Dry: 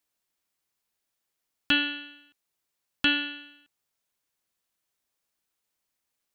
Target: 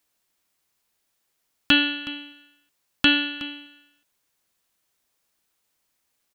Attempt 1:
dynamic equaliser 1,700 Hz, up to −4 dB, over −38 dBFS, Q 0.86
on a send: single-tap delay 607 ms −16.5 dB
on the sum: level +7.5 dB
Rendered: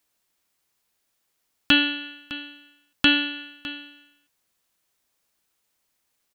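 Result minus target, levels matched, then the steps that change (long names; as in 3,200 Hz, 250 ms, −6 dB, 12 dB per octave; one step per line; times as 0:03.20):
echo 239 ms late
change: single-tap delay 368 ms −16.5 dB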